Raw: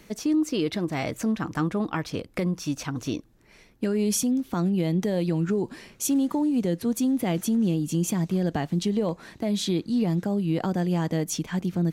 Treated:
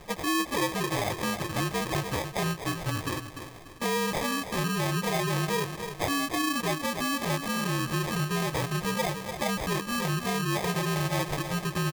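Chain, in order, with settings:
partials spread apart or drawn together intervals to 121%
downward compressor 2.5 to 1, threshold −37 dBFS, peak gain reduction 11.5 dB
on a send: repeating echo 294 ms, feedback 40%, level −10.5 dB
on the sum: decimation without filtering 31×
low-shelf EQ 88 Hz −5.5 dB
in parallel at 0 dB: brickwall limiter −31.5 dBFS, peak gain reduction 7 dB
on the sum: parametric band 240 Hz −11 dB 1.1 octaves
level +7 dB

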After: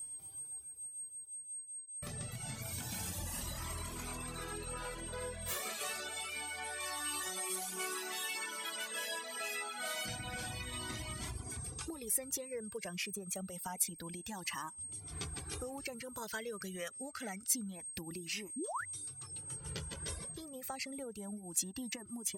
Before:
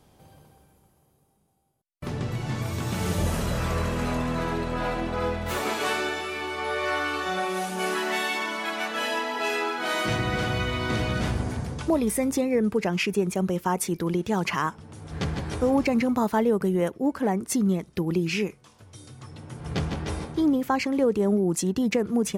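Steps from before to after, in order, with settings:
reverb reduction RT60 0.69 s
steady tone 8,400 Hz −46 dBFS
0:06.80–0:07.56: high-shelf EQ 5,900 Hz +9.5 dB
0:16.22–0:17.48: gain on a spectral selection 1,200–7,400 Hz +10 dB
downward compressor 4 to 1, threshold −29 dBFS, peak gain reduction 10.5 dB
first-order pre-emphasis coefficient 0.8
0:18.56–0:18.85: sound drawn into the spectrogram rise 220–2,100 Hz −41 dBFS
flanger whose copies keep moving one way rising 0.27 Hz
level +6 dB

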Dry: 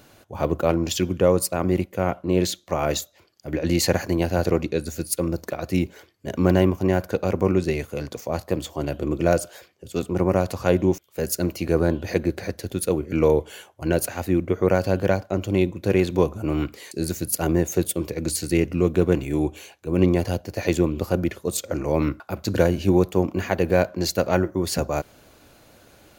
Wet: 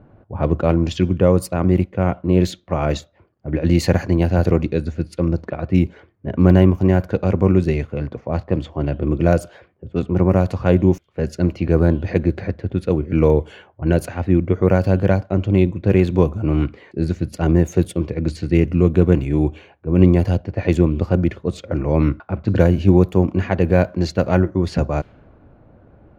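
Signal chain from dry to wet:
low-pass that shuts in the quiet parts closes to 980 Hz, open at −16.5 dBFS
bass and treble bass +8 dB, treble −9 dB
level +1.5 dB

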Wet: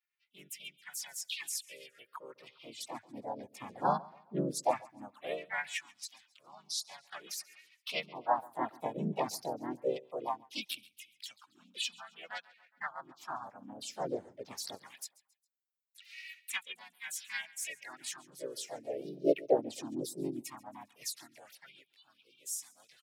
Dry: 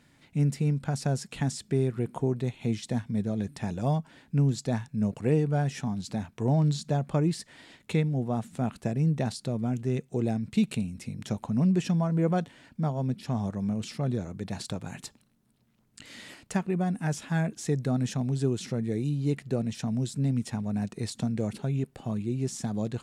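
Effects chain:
spectral dynamics exaggerated over time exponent 2
repeating echo 135 ms, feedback 40%, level −22 dB
auto-filter high-pass sine 0.19 Hz 370–2,600 Hz
pitch-shifted copies added +3 semitones −1 dB, +5 semitones 0 dB, +7 semitones −5 dB

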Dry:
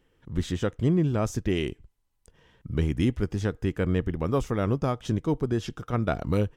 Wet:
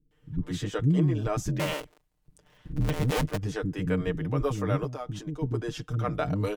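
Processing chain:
0:01.48–0:03.26: sub-harmonics by changed cycles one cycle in 2, inverted
0:04.76–0:05.42: downward compressor 3 to 1, threshold −32 dBFS, peak gain reduction 9.5 dB
comb filter 6.6 ms, depth 78%
multiband delay without the direct sound lows, highs 110 ms, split 310 Hz
level −2.5 dB

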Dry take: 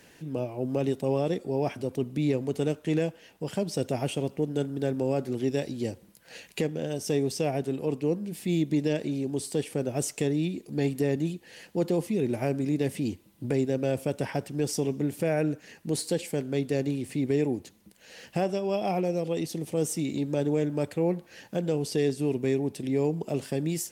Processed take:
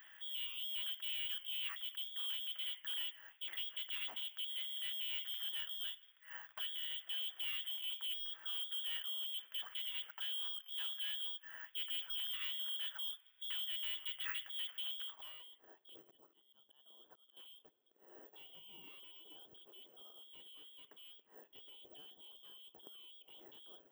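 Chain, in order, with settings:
0:15.98–0:17.37: volume swells 577 ms
voice inversion scrambler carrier 3,500 Hz
soft clipping −31.5 dBFS, distortion −6 dB
band-pass filter sweep 1,800 Hz → 390 Hz, 0:14.95–0:15.48
bad sample-rate conversion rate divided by 2×, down none, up zero stuff

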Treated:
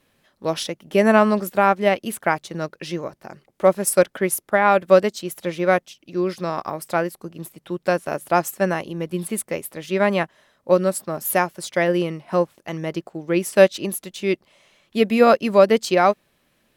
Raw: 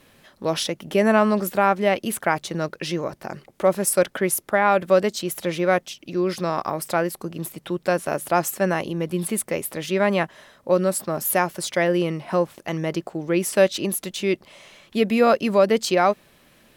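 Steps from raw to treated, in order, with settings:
expander for the loud parts 1.5 to 1, over −40 dBFS
level +4.5 dB

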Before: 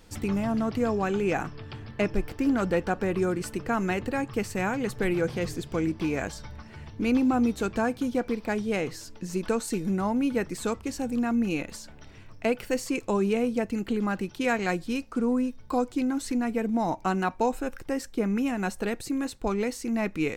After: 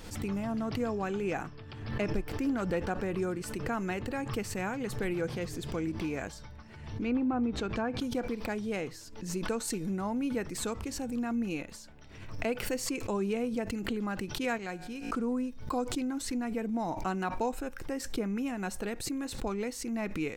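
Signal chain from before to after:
0:06.77–0:08.00: treble cut that deepens with the level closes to 2,000 Hz, closed at −20 dBFS
0:14.58–0:15.11: tuned comb filter 56 Hz, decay 1.2 s, harmonics all, mix 50%
background raised ahead of every attack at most 62 dB per second
level −6.5 dB

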